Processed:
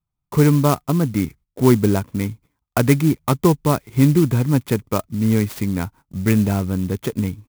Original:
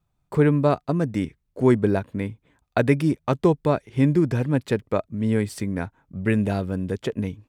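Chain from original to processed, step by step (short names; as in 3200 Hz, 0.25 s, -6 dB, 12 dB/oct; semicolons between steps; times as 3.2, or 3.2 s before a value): gate -47 dBFS, range -15 dB; comb 0.9 ms, depth 41%; clock jitter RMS 0.054 ms; gain +3.5 dB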